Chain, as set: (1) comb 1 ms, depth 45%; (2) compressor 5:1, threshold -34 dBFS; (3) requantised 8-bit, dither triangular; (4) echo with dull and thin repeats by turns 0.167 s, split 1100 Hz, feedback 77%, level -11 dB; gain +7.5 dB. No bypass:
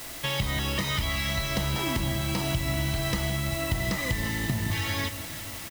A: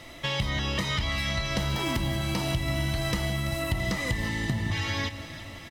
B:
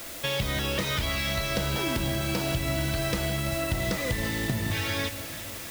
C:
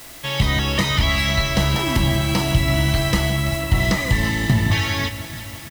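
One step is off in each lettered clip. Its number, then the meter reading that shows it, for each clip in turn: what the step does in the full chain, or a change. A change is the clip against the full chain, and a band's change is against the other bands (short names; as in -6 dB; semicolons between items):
3, distortion -11 dB; 1, 500 Hz band +3.5 dB; 2, mean gain reduction 7.5 dB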